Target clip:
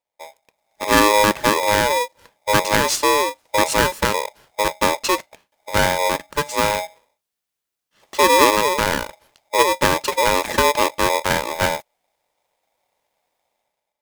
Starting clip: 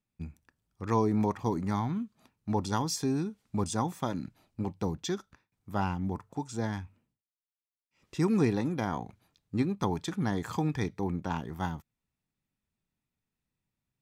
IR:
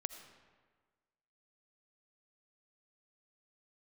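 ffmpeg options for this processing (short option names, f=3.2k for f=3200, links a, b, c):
-af "dynaudnorm=f=170:g=7:m=13.5dB,aeval=exprs='val(0)*sgn(sin(2*PI*730*n/s))':c=same"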